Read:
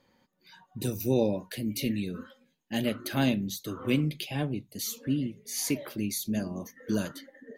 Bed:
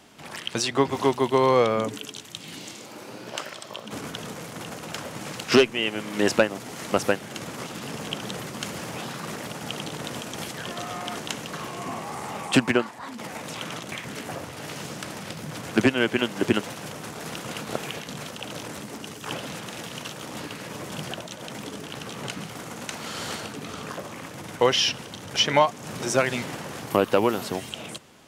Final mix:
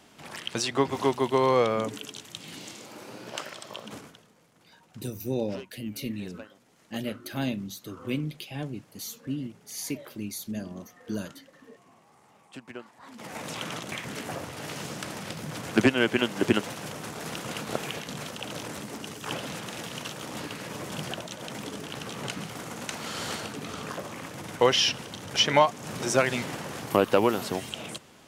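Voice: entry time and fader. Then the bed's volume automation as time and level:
4.20 s, -4.0 dB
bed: 3.88 s -3 dB
4.29 s -25.5 dB
12.56 s -25.5 dB
13.40 s -1 dB

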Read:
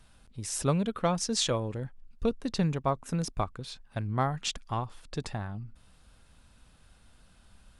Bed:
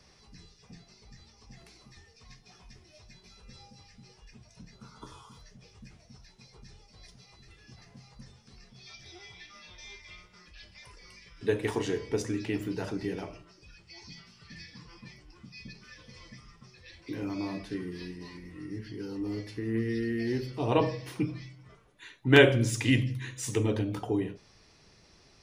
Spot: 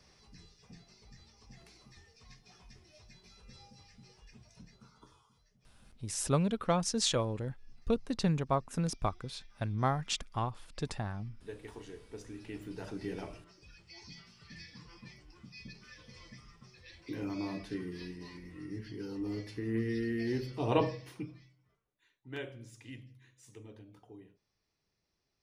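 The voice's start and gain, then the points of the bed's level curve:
5.65 s, -2.0 dB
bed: 4.58 s -3.5 dB
5.33 s -17.5 dB
12.07 s -17.5 dB
13.28 s -3 dB
20.81 s -3 dB
21.83 s -23.5 dB

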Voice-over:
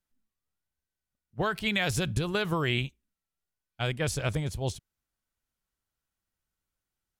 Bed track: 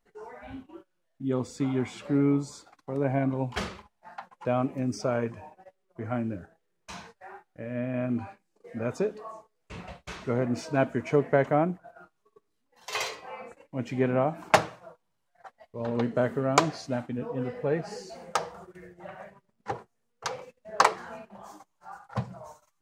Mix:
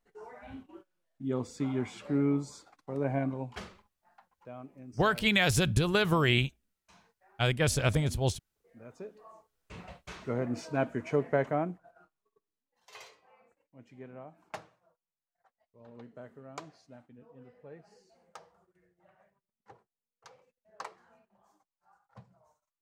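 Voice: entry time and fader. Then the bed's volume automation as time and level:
3.60 s, +2.5 dB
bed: 3.20 s -4 dB
4.06 s -19 dB
8.87 s -19 dB
9.68 s -5 dB
11.41 s -5 dB
13.34 s -22 dB

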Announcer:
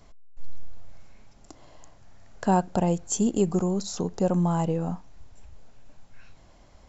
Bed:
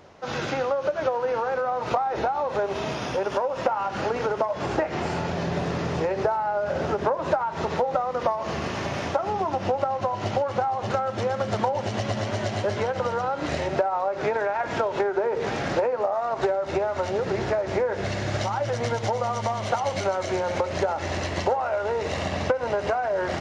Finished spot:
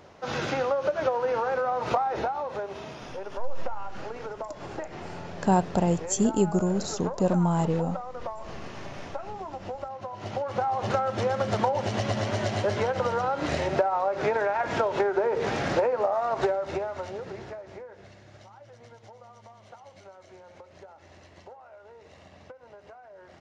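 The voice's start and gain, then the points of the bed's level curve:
3.00 s, 0.0 dB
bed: 2.04 s -1 dB
2.91 s -11.5 dB
10.08 s -11.5 dB
10.74 s -0.5 dB
16.39 s -0.5 dB
18.23 s -24 dB

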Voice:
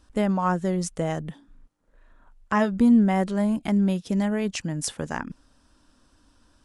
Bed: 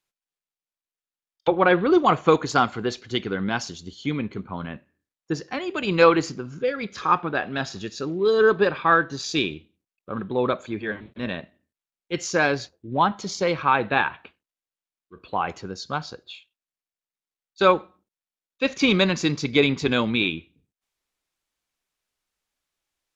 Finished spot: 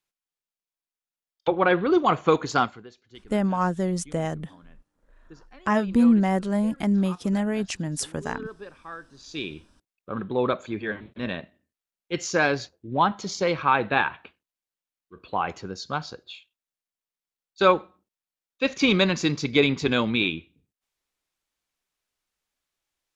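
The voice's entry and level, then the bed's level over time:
3.15 s, -0.5 dB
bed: 2.63 s -2.5 dB
2.89 s -21.5 dB
9.09 s -21.5 dB
9.60 s -1 dB

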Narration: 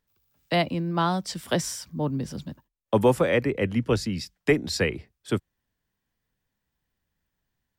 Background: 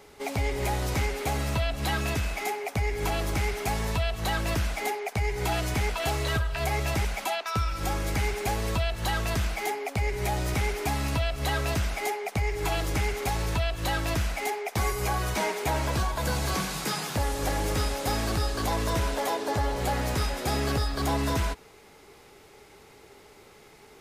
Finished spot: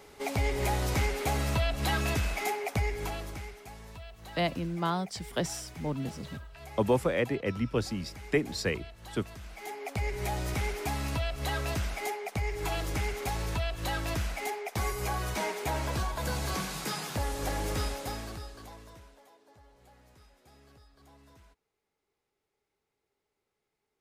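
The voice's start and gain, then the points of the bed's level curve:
3.85 s, -6.0 dB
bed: 2.77 s -1 dB
3.66 s -18.5 dB
9.40 s -18.5 dB
9.90 s -4.5 dB
17.87 s -4.5 dB
19.30 s -31.5 dB

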